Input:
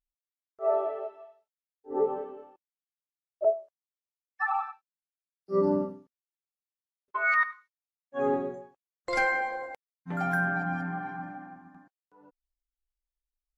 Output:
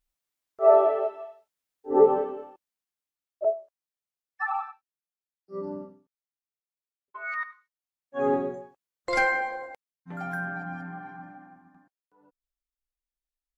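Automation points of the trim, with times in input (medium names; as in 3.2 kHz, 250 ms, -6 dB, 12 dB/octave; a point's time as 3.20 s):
2.18 s +9 dB
3.45 s -0.5 dB
4.56 s -0.5 dB
5.52 s -10 dB
7.17 s -10 dB
8.33 s +3 dB
9.19 s +3 dB
10.11 s -5 dB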